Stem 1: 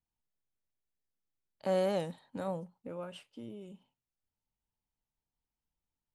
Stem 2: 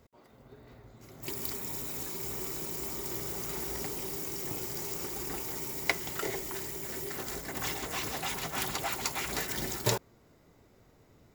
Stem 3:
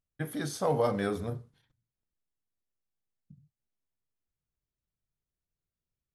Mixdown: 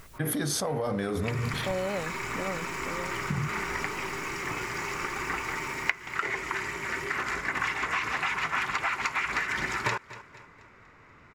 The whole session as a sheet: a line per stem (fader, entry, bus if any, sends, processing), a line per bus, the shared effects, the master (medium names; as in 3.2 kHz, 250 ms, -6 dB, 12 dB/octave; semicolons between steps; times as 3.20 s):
+2.0 dB, 0.00 s, no send, no echo send, none
+2.5 dB, 0.00 s, no send, echo send -23.5 dB, low-pass 6.1 kHz 12 dB/octave; high-order bell 1.6 kHz +14.5 dB
-2.0 dB, 0.00 s, no send, no echo send, level flattener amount 100%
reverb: none
echo: feedback delay 240 ms, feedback 44%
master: compression 5:1, threshold -26 dBFS, peak gain reduction 18 dB